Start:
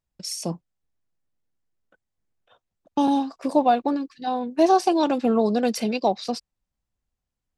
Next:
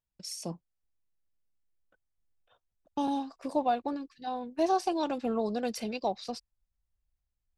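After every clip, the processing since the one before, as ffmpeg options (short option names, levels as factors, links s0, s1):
-af "asubboost=boost=4:cutoff=97,volume=0.376"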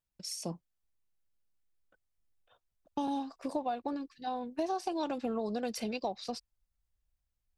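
-af "acompressor=threshold=0.0316:ratio=6"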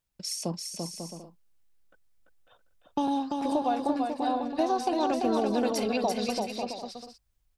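-af "aecho=1:1:340|544|666.4|739.8|783.9:0.631|0.398|0.251|0.158|0.1,volume=2"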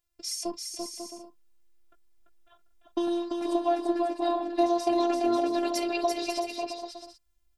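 -af "afftfilt=real='hypot(re,im)*cos(PI*b)':imag='0':win_size=512:overlap=0.75,volume=1.58"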